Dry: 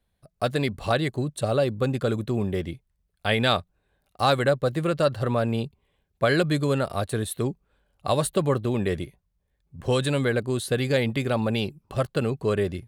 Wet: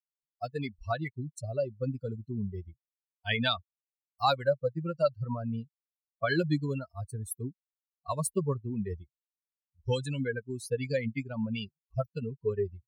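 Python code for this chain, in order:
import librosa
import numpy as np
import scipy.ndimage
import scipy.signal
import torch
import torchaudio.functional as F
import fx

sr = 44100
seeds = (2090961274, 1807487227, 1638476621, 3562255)

y = fx.bin_expand(x, sr, power=3.0)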